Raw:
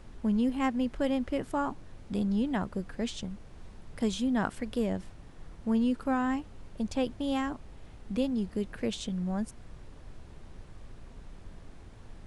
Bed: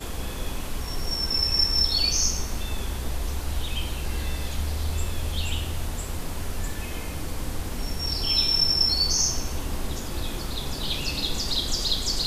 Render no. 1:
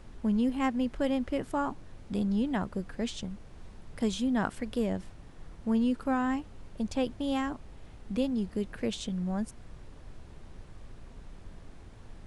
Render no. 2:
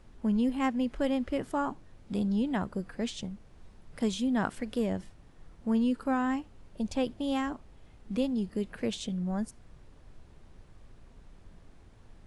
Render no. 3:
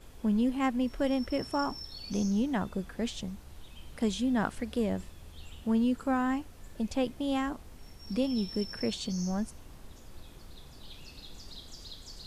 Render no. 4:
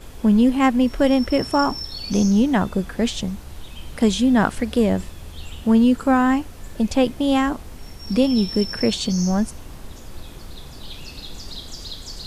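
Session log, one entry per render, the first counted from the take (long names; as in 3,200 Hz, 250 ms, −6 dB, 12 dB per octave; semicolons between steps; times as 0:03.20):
no processing that can be heard
noise reduction from a noise print 6 dB
mix in bed −21.5 dB
level +12 dB; brickwall limiter −3 dBFS, peak gain reduction 0.5 dB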